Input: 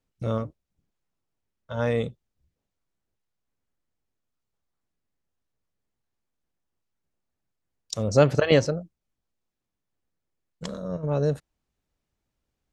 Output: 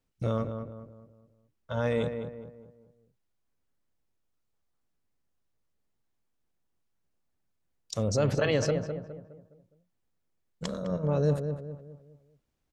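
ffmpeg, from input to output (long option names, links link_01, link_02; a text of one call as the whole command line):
ffmpeg -i in.wav -filter_complex "[0:a]alimiter=limit=-18dB:level=0:latency=1:release=26,asplit=2[link_01][link_02];[link_02]adelay=207,lowpass=frequency=1500:poles=1,volume=-7dB,asplit=2[link_03][link_04];[link_04]adelay=207,lowpass=frequency=1500:poles=1,volume=0.42,asplit=2[link_05][link_06];[link_06]adelay=207,lowpass=frequency=1500:poles=1,volume=0.42,asplit=2[link_07][link_08];[link_08]adelay=207,lowpass=frequency=1500:poles=1,volume=0.42,asplit=2[link_09][link_10];[link_10]adelay=207,lowpass=frequency=1500:poles=1,volume=0.42[link_11];[link_03][link_05][link_07][link_09][link_11]amix=inputs=5:normalize=0[link_12];[link_01][link_12]amix=inputs=2:normalize=0" out.wav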